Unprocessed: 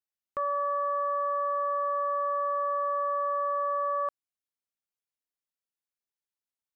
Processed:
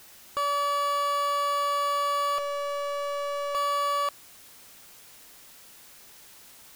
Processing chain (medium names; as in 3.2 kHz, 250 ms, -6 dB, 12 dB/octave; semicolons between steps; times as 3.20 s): 2.38–3.55 s: two resonant band-passes 1 kHz, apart 0.97 oct; power-law waveshaper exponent 0.35